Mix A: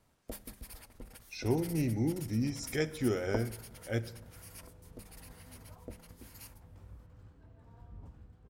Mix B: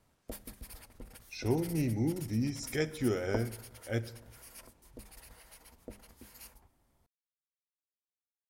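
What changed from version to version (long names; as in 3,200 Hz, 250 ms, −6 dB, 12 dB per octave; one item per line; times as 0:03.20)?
second sound: muted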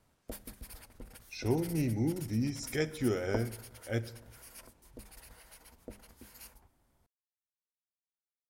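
background: remove notch filter 1,500 Hz, Q 20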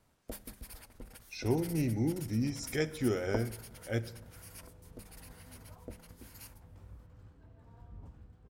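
second sound: unmuted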